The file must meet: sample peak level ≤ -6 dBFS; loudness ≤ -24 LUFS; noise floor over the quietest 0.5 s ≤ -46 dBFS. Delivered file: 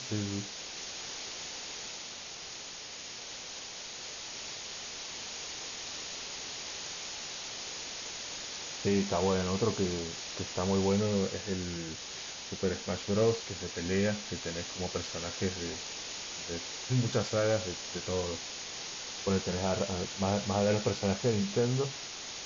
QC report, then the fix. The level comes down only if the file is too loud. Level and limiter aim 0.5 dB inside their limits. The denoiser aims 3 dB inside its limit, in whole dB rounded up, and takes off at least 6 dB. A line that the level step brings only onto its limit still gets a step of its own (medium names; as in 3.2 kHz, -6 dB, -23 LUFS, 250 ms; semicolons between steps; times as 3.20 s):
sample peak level -17.5 dBFS: pass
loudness -34.0 LUFS: pass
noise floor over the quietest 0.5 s -44 dBFS: fail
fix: noise reduction 6 dB, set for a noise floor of -44 dBFS